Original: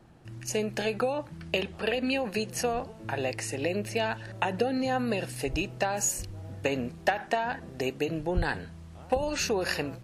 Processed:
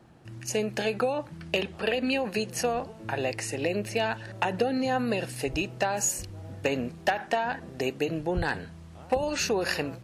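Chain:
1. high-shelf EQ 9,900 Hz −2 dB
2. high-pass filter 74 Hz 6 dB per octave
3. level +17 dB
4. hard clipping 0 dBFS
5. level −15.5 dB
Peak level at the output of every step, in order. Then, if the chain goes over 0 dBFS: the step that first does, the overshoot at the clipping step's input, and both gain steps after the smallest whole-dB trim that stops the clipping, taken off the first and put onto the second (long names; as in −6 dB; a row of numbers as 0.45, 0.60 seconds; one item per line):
−12.5, −12.0, +5.0, 0.0, −15.5 dBFS
step 3, 5.0 dB
step 3 +12 dB, step 5 −10.5 dB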